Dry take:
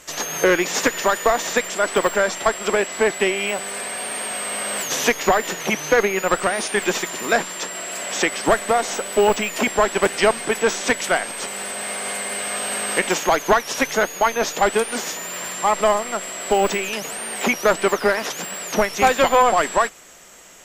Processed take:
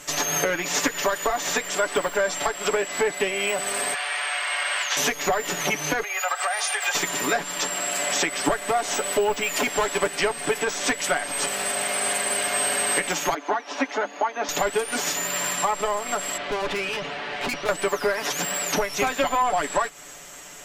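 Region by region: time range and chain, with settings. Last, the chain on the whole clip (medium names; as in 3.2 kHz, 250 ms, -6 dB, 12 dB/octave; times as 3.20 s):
3.94–4.97 s: band-pass 790–2400 Hz + tilt EQ +4 dB/octave
6.03–6.95 s: Chebyshev high-pass 590 Hz, order 4 + compression, threshold -24 dBFS + comb 2.5 ms, depth 56%
9.43–9.99 s: tone controls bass -4 dB, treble +1 dB + hard clipper -15 dBFS
13.34–14.49 s: rippled Chebyshev high-pass 200 Hz, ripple 6 dB + distance through air 140 m
16.37–17.69 s: inverse Chebyshev low-pass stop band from 9.3 kHz, stop band 50 dB + valve stage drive 27 dB, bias 0.4
whole clip: compression 5:1, threshold -24 dBFS; band-stop 470 Hz, Q 12; comb 6.9 ms; trim +2 dB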